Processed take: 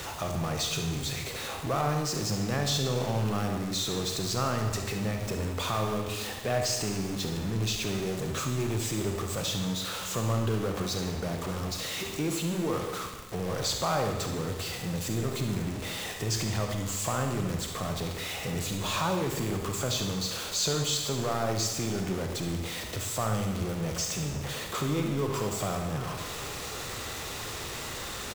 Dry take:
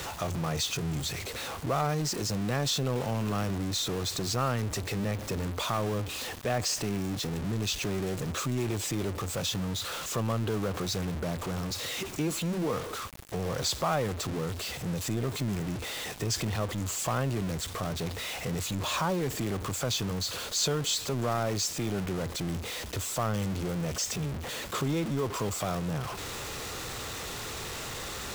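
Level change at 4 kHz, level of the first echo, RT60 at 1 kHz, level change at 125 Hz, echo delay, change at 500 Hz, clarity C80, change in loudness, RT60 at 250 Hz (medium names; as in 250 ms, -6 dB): +0.5 dB, -11.0 dB, 1.3 s, +1.0 dB, 71 ms, +1.0 dB, 7.0 dB, +0.5 dB, 1.2 s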